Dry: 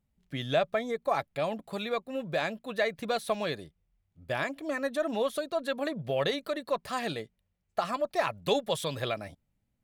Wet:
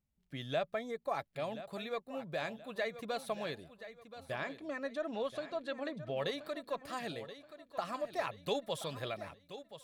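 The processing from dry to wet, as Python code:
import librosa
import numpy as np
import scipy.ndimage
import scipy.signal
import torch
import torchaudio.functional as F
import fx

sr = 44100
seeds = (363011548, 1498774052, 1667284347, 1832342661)

p1 = fx.lowpass(x, sr, hz=5700.0, slope=12, at=(4.34, 6.16), fade=0.02)
p2 = p1 + fx.echo_feedback(p1, sr, ms=1027, feedback_pct=38, wet_db=-13.0, dry=0)
y = p2 * librosa.db_to_amplitude(-8.0)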